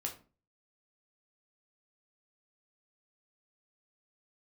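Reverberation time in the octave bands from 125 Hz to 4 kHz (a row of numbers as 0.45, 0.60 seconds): 0.50, 0.45, 0.40, 0.35, 0.30, 0.25 seconds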